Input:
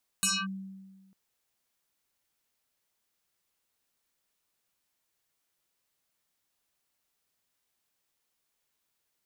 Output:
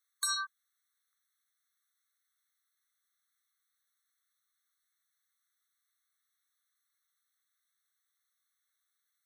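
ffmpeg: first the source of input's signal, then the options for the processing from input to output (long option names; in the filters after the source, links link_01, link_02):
-f lavfi -i "aevalsrc='0.075*pow(10,-3*t/1.46)*sin(2*PI*192*t+7.9*clip(1-t/0.24,0,1)*sin(2*PI*7.1*192*t))':duration=0.9:sample_rate=44100"
-af "equalizer=frequency=5700:width=7.8:gain=-2,afftfilt=real='re*eq(mod(floor(b*sr/1024/1100),2),1)':imag='im*eq(mod(floor(b*sr/1024/1100),2),1)':win_size=1024:overlap=0.75"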